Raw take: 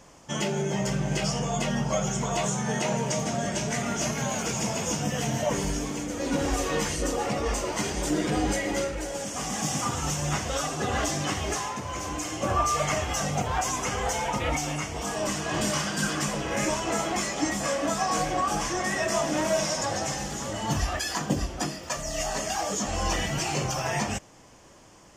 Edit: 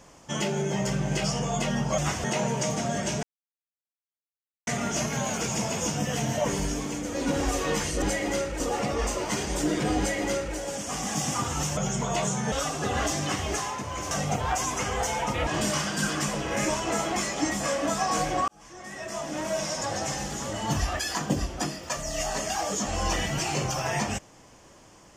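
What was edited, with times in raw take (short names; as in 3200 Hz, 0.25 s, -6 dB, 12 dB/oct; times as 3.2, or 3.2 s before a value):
1.98–2.73 swap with 10.24–10.5
3.72 insert silence 1.44 s
8.45–9.03 copy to 7.07
12.09–13.17 cut
14.53–15.47 cut
18.48–20.18 fade in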